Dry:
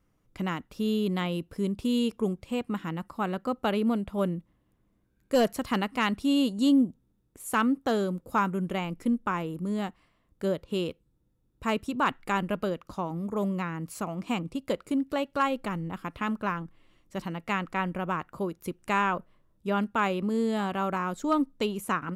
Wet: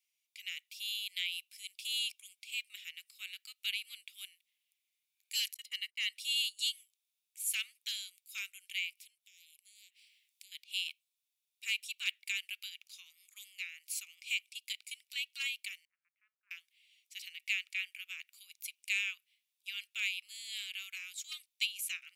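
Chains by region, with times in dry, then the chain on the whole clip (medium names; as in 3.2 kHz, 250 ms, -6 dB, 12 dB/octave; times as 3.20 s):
5.54–6.16 s: gate -39 dBFS, range -33 dB + tilt shelf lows +7.5 dB, about 840 Hz + comb 1 ms, depth 58%
8.97–10.52 s: compression 2:1, threshold -52 dBFS + spectrum-flattening compressor 10:1
15.85–16.51 s: steep low-pass 1.4 kHz + differentiator
whole clip: Chebyshev high-pass 2.3 kHz, order 5; level rider gain up to 3 dB; trim +2 dB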